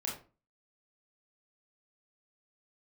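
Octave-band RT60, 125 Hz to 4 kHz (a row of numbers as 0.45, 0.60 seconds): 0.45, 0.45, 0.35, 0.35, 0.30, 0.25 seconds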